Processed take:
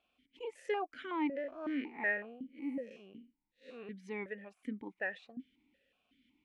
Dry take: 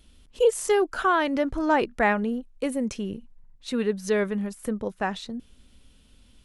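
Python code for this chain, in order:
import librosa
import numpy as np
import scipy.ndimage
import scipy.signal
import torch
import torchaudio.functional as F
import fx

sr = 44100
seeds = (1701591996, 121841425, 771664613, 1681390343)

y = fx.spec_blur(x, sr, span_ms=129.0, at=(1.35, 3.9), fade=0.02)
y = fx.peak_eq(y, sr, hz=1900.0, db=8.5, octaves=0.7)
y = fx.vowel_held(y, sr, hz=5.4)
y = F.gain(torch.from_numpy(y), -1.5).numpy()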